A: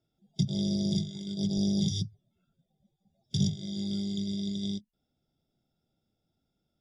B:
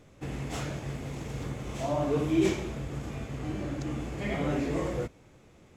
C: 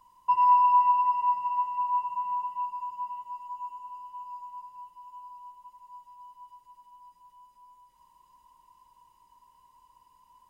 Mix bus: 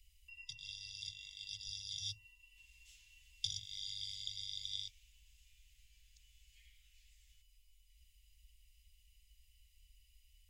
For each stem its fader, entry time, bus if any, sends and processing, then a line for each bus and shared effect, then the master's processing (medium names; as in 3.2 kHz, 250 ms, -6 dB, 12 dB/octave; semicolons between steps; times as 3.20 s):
-0.5 dB, 0.10 s, bus A, no send, gate with hold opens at -54 dBFS
-17.5 dB, 2.35 s, no bus, no send, bass shelf 360 Hz -10.5 dB; compression, threshold -36 dBFS, peak gain reduction 10.5 dB
-0.5 dB, 0.00 s, bus A, no send, resonant low shelf 100 Hz +12 dB, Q 1.5
bus A: 0.0 dB, peaking EQ 2.2 kHz +13 dB 0.8 oct; compression 2.5:1, threshold -32 dBFS, peak gain reduction 12 dB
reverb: none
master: inverse Chebyshev band-stop 200–1000 Hz, stop band 60 dB